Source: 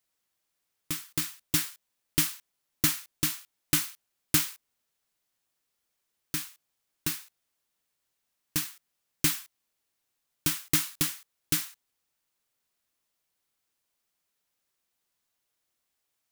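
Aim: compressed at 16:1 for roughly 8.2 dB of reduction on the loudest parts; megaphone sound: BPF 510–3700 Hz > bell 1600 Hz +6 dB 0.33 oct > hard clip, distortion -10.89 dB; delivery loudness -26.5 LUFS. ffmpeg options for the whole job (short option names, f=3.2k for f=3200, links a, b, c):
-af "acompressor=threshold=-27dB:ratio=16,highpass=510,lowpass=3.7k,equalizer=f=1.6k:t=o:w=0.33:g=6,asoftclip=type=hard:threshold=-33.5dB,volume=18.5dB"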